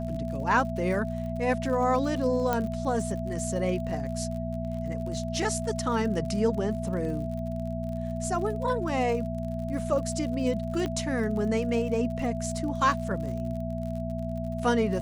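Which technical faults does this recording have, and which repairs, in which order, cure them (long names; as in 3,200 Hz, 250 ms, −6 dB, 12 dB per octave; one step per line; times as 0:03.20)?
surface crackle 52 per second −36 dBFS
mains hum 60 Hz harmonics 4 −33 dBFS
whistle 660 Hz −35 dBFS
0:02.53: click −13 dBFS
0:10.86: click −19 dBFS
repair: click removal
notch filter 660 Hz, Q 30
hum removal 60 Hz, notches 4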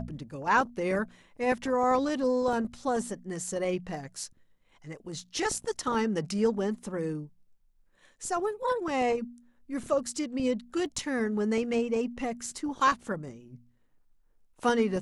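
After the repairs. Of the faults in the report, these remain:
0:02.53: click
0:10.86: click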